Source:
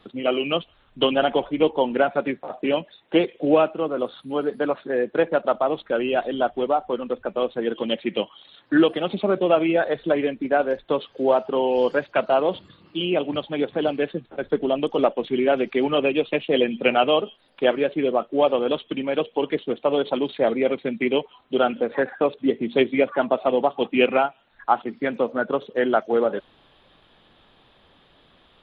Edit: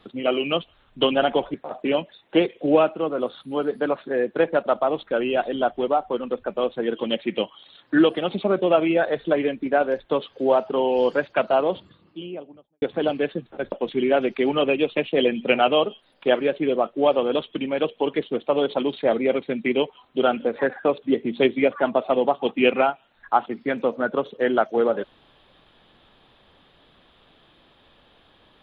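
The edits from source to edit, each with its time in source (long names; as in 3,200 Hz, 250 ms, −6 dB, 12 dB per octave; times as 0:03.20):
0:01.54–0:02.33: remove
0:12.23–0:13.61: fade out and dull
0:14.51–0:15.08: remove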